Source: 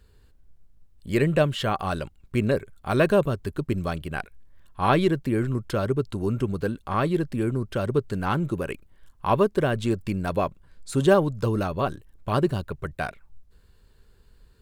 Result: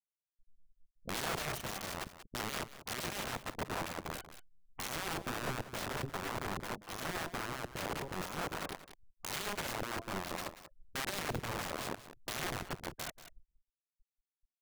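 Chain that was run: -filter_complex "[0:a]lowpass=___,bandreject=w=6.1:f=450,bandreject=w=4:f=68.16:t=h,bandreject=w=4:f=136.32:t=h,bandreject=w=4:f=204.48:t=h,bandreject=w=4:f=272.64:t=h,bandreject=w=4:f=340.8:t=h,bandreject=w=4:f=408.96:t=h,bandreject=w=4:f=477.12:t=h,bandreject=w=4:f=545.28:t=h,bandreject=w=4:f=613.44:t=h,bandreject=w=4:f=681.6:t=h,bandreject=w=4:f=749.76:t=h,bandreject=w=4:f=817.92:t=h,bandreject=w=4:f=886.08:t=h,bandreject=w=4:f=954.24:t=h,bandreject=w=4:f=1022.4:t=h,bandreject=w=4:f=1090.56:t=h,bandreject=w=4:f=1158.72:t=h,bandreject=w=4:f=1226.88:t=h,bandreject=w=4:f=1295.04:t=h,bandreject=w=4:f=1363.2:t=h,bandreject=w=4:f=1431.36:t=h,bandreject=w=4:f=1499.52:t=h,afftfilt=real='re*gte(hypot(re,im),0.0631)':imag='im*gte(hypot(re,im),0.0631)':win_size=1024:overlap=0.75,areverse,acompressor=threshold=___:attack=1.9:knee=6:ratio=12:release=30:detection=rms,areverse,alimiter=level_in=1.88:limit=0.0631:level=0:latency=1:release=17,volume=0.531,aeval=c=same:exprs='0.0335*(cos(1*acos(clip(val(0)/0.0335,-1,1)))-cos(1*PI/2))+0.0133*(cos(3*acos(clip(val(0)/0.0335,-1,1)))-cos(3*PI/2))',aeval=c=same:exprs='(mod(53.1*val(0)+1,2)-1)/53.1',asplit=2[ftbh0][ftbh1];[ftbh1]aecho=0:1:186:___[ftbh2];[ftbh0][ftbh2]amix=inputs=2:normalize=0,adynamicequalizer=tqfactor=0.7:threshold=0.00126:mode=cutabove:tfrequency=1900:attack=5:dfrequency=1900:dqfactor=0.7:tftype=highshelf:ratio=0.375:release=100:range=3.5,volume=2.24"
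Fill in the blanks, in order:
2800, 0.0282, 0.2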